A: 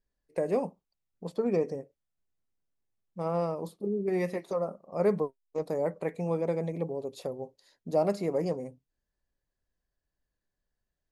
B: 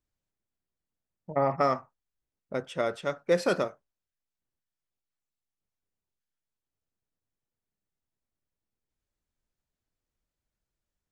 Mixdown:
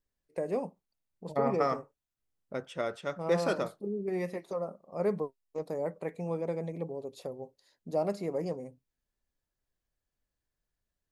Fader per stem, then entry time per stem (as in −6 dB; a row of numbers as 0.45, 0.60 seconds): −4.0, −4.5 decibels; 0.00, 0.00 seconds